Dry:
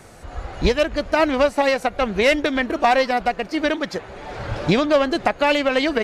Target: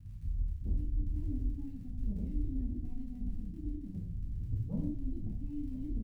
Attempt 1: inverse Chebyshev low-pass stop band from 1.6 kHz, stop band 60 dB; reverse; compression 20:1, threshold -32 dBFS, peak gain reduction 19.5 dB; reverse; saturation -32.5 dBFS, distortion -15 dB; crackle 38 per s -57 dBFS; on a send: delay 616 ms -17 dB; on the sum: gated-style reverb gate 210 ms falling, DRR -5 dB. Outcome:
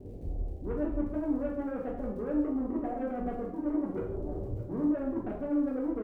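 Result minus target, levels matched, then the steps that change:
2 kHz band +19.0 dB; echo 404 ms early
change: inverse Chebyshev low-pass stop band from 520 Hz, stop band 60 dB; change: delay 1020 ms -17 dB

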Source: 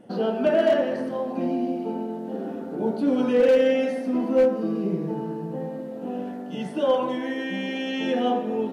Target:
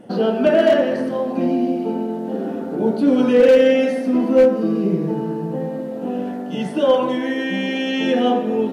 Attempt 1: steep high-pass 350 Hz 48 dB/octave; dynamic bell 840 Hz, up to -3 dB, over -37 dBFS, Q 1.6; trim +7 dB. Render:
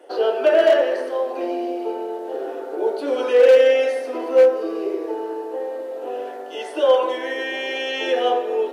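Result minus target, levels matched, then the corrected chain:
250 Hz band -11.0 dB
dynamic bell 840 Hz, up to -3 dB, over -37 dBFS, Q 1.6; trim +7 dB

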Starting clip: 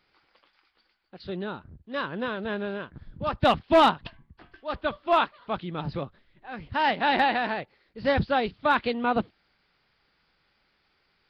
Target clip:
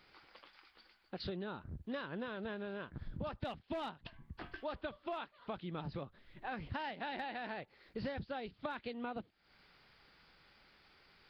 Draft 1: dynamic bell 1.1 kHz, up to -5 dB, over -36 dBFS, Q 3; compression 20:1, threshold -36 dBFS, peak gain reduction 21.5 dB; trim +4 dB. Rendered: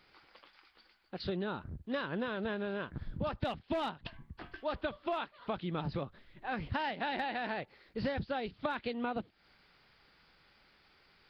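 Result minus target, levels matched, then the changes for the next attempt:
compression: peak gain reduction -6 dB
change: compression 20:1, threshold -42.5 dBFS, peak gain reduction 27.5 dB

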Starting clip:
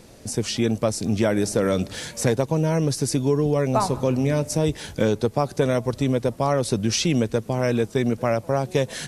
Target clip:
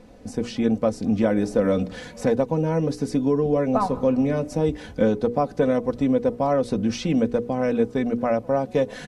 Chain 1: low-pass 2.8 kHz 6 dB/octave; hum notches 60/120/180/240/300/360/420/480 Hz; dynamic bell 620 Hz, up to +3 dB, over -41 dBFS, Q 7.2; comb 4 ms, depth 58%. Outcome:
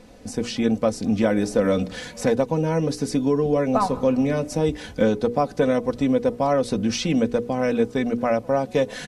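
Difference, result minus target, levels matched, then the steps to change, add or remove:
2 kHz band +3.0 dB
change: low-pass 1.2 kHz 6 dB/octave

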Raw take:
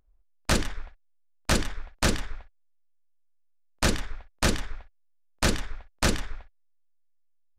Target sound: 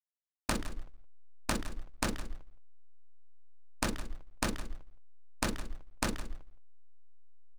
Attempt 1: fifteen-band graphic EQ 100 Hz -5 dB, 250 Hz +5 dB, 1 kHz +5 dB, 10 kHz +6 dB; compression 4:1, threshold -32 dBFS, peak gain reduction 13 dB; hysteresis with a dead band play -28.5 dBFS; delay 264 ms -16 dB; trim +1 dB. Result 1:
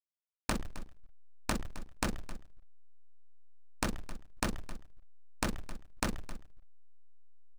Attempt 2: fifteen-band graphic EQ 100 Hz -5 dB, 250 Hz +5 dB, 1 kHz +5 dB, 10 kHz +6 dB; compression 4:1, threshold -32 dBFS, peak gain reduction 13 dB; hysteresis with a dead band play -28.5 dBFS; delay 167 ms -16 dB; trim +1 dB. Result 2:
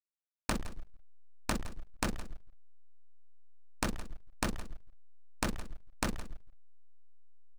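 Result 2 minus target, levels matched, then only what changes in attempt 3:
hysteresis with a dead band: distortion +4 dB
change: hysteresis with a dead band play -35 dBFS

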